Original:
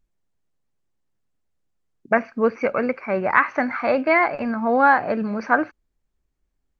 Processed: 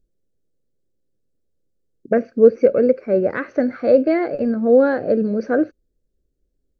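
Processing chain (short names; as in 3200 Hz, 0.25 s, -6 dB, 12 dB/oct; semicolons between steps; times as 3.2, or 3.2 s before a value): EQ curve 190 Hz 0 dB, 520 Hz +7 dB, 940 Hz -24 dB, 1500 Hz -11 dB, 2300 Hz -17 dB, 3900 Hz -6 dB; gain +3.5 dB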